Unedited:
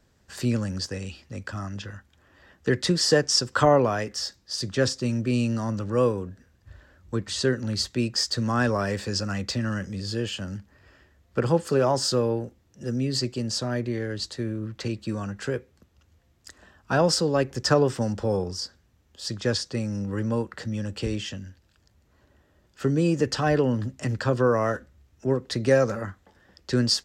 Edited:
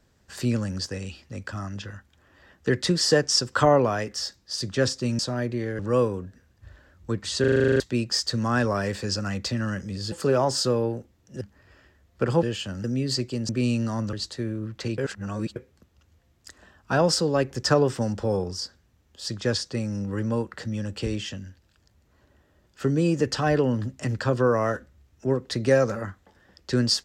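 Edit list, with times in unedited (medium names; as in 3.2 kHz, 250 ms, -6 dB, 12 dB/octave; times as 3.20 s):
5.19–5.83 s: swap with 13.53–14.13 s
7.44 s: stutter in place 0.04 s, 10 plays
10.16–10.57 s: swap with 11.59–12.88 s
14.98–15.56 s: reverse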